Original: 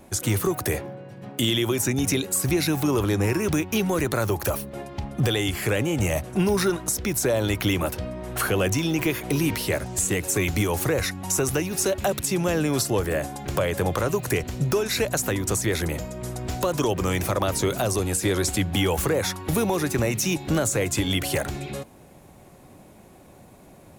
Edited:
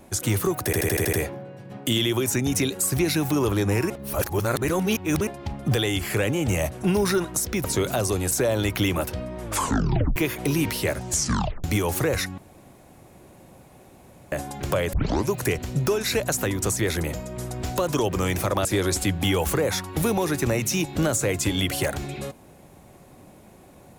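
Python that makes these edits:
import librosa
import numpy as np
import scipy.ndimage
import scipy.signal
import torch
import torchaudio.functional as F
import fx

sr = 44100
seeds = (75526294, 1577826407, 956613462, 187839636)

y = fx.edit(x, sr, fx.stutter(start_s=0.65, slice_s=0.08, count=7),
    fx.reverse_span(start_s=3.42, length_s=1.37),
    fx.tape_stop(start_s=8.27, length_s=0.74),
    fx.tape_stop(start_s=9.95, length_s=0.54),
    fx.room_tone_fill(start_s=11.23, length_s=1.94),
    fx.tape_start(start_s=13.78, length_s=0.38),
    fx.move(start_s=17.5, length_s=0.67, to_s=7.16), tone=tone)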